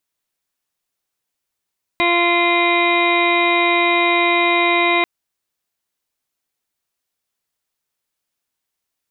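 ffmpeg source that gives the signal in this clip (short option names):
-f lavfi -i "aevalsrc='0.1*sin(2*PI*346*t)+0.0944*sin(2*PI*692*t)+0.1*sin(2*PI*1038*t)+0.0178*sin(2*PI*1384*t)+0.0126*sin(2*PI*1730*t)+0.126*sin(2*PI*2076*t)+0.0841*sin(2*PI*2422*t)+0.0119*sin(2*PI*2768*t)+0.0224*sin(2*PI*3114*t)+0.0119*sin(2*PI*3460*t)+0.0562*sin(2*PI*3806*t)':d=3.04:s=44100"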